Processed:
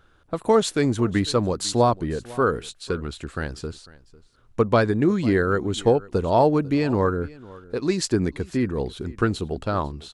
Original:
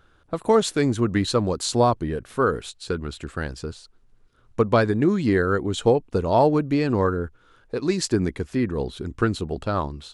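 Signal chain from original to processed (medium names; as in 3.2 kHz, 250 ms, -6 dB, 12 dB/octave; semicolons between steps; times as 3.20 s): short-mantissa float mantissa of 8-bit; on a send: delay 499 ms -21 dB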